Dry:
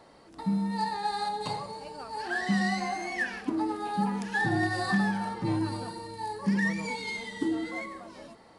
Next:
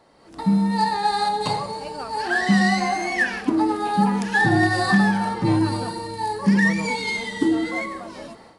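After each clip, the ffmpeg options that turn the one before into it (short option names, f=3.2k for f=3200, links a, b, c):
-af "dynaudnorm=f=180:g=3:m=11.5dB,volume=-2dB"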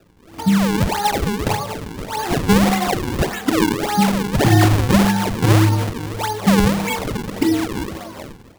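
-af "equalizer=f=96:w=3:g=13.5,acrusher=samples=40:mix=1:aa=0.000001:lfo=1:lforange=64:lforate=1.7,volume=2.5dB"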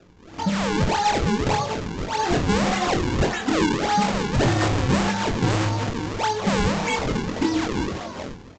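-filter_complex "[0:a]aresample=16000,asoftclip=type=tanh:threshold=-16dB,aresample=44100,asplit=2[a][b];[b]adelay=23,volume=-5.5dB[c];[a][c]amix=inputs=2:normalize=0"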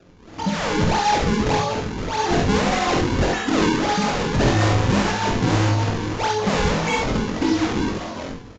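-af "aecho=1:1:49|68:0.562|0.596,aresample=16000,aresample=44100"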